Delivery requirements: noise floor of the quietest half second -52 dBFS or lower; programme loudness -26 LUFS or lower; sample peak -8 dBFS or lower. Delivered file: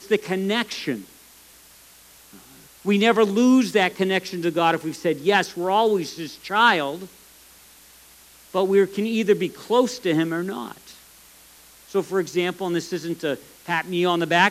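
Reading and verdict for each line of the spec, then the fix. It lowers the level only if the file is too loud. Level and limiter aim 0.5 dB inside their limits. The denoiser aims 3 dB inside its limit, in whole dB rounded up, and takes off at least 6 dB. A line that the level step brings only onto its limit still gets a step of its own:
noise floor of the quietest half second -50 dBFS: fail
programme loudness -22.0 LUFS: fail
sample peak -4.0 dBFS: fail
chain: trim -4.5 dB

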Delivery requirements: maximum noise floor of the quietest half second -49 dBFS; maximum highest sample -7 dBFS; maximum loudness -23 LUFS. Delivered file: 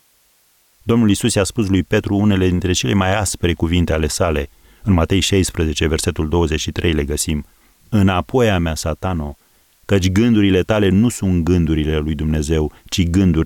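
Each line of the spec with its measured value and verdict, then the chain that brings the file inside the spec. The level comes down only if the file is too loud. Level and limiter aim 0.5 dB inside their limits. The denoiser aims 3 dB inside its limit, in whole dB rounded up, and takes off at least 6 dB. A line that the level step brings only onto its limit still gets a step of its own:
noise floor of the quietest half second -57 dBFS: pass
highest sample -5.0 dBFS: fail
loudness -17.0 LUFS: fail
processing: trim -6.5 dB

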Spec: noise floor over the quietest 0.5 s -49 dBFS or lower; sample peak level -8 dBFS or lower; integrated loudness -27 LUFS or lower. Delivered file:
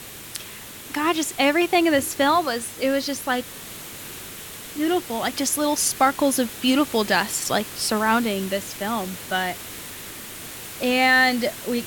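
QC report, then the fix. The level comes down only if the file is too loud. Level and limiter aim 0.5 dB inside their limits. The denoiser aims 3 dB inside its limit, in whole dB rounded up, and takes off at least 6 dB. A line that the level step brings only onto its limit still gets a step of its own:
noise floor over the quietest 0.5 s -39 dBFS: fail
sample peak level -5.0 dBFS: fail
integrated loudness -21.5 LUFS: fail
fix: noise reduction 7 dB, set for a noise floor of -39 dBFS; trim -6 dB

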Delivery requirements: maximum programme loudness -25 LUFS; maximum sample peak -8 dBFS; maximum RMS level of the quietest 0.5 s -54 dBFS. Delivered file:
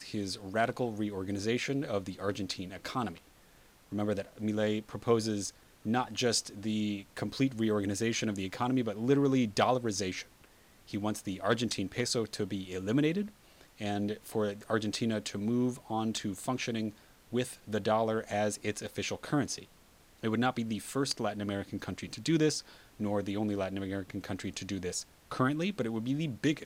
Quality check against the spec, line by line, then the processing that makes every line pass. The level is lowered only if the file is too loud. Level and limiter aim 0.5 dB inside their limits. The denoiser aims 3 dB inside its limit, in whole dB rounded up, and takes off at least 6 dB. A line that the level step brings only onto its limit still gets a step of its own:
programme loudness -33.5 LUFS: pass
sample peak -13.0 dBFS: pass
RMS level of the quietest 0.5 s -60 dBFS: pass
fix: none needed

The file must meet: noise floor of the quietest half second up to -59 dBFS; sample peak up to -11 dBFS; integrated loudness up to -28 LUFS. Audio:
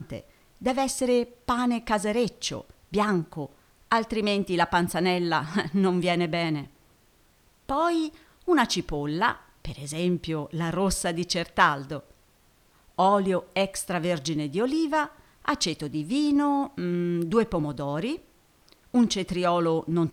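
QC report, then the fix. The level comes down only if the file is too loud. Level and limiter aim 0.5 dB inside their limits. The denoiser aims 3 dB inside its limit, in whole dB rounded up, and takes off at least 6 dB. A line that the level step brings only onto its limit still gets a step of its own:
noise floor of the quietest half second -61 dBFS: pass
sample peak -6.0 dBFS: fail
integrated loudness -26.0 LUFS: fail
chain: trim -2.5 dB; peak limiter -11.5 dBFS

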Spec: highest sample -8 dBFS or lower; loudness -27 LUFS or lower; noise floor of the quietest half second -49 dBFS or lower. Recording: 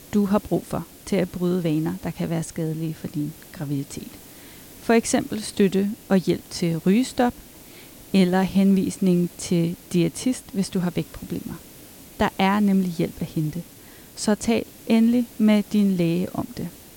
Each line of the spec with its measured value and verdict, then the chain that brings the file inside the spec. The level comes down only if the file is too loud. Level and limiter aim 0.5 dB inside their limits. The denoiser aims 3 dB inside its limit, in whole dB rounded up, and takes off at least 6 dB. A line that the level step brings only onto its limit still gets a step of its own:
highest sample -6.0 dBFS: fail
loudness -23.0 LUFS: fail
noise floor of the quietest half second -45 dBFS: fail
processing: trim -4.5 dB

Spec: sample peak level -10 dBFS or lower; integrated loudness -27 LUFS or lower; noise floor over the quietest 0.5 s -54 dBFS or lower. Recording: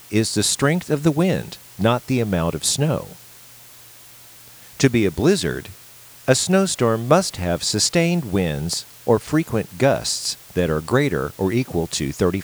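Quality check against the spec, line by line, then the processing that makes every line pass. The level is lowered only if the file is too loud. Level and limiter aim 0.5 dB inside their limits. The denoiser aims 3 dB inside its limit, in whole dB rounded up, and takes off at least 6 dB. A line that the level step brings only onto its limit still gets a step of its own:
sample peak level -2.5 dBFS: fail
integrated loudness -20.0 LUFS: fail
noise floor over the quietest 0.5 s -44 dBFS: fail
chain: noise reduction 6 dB, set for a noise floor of -44 dBFS; trim -7.5 dB; peak limiter -10.5 dBFS

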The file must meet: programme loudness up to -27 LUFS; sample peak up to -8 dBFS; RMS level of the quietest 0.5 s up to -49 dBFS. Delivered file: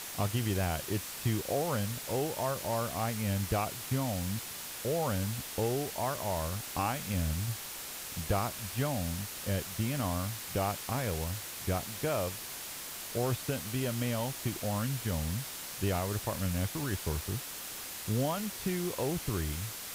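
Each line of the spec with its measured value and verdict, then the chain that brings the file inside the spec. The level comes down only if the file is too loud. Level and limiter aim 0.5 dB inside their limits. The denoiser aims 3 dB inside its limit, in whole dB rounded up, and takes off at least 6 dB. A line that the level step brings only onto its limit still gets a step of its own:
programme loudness -34.0 LUFS: pass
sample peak -18.0 dBFS: pass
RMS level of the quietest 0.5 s -42 dBFS: fail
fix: noise reduction 10 dB, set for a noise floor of -42 dBFS

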